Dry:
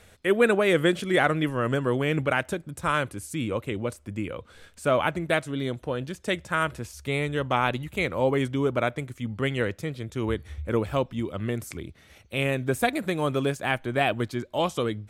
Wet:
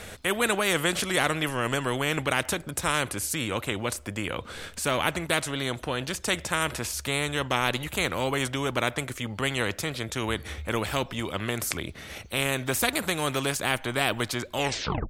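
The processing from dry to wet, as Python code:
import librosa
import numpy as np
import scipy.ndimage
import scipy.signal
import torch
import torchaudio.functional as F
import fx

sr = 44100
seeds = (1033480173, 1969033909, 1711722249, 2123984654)

y = fx.tape_stop_end(x, sr, length_s=0.55)
y = fx.spectral_comp(y, sr, ratio=2.0)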